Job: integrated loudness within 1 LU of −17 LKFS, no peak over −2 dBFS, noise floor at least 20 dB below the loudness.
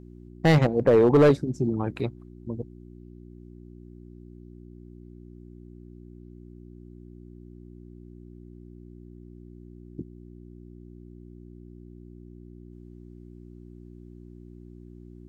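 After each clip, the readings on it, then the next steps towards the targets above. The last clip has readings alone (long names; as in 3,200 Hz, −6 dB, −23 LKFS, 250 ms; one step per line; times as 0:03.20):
share of clipped samples 0.4%; peaks flattened at −12.0 dBFS; mains hum 60 Hz; hum harmonics up to 360 Hz; level of the hum −43 dBFS; integrated loudness −22.5 LKFS; sample peak −12.0 dBFS; target loudness −17.0 LKFS
→ clipped peaks rebuilt −12 dBFS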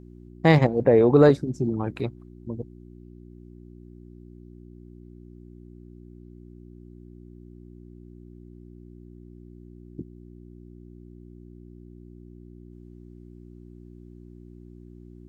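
share of clipped samples 0.0%; mains hum 60 Hz; hum harmonics up to 360 Hz; level of the hum −43 dBFS
→ hum removal 60 Hz, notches 6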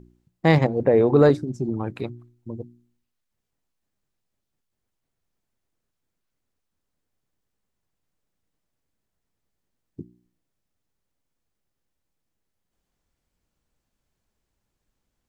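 mains hum none found; integrated loudness −20.0 LKFS; sample peak −4.0 dBFS; target loudness −17.0 LKFS
→ level +3 dB
brickwall limiter −2 dBFS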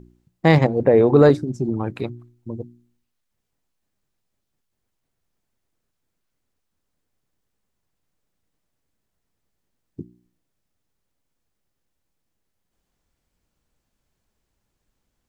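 integrated loudness −17.5 LKFS; sample peak −2.0 dBFS; background noise floor −77 dBFS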